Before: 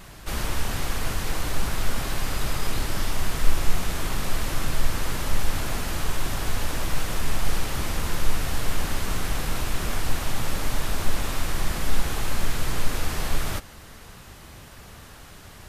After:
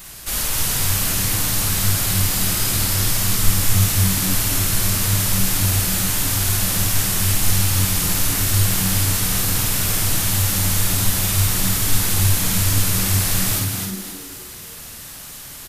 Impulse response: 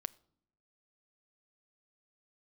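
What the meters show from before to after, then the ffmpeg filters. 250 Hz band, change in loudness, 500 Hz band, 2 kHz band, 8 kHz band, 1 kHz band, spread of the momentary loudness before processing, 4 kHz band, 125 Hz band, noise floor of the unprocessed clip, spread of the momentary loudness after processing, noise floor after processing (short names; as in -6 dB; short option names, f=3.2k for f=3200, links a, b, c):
+8.5 dB, +12.0 dB, +2.0 dB, +6.0 dB, +16.0 dB, +3.0 dB, 16 LU, +10.5 dB, +11.5 dB, -45 dBFS, 8 LU, -36 dBFS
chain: -filter_complex "[0:a]crystalizer=i=5:c=0,asplit=6[a][b][c][d][e][f];[b]adelay=264,afreqshift=90,volume=-4.5dB[g];[c]adelay=528,afreqshift=180,volume=-12.7dB[h];[d]adelay=792,afreqshift=270,volume=-20.9dB[i];[e]adelay=1056,afreqshift=360,volume=-29dB[j];[f]adelay=1320,afreqshift=450,volume=-37.2dB[k];[a][g][h][i][j][k]amix=inputs=6:normalize=0,asplit=2[l][m];[1:a]atrim=start_sample=2205,adelay=52[n];[m][n]afir=irnorm=-1:irlink=0,volume=-1.5dB[o];[l][o]amix=inputs=2:normalize=0,volume=-2.5dB"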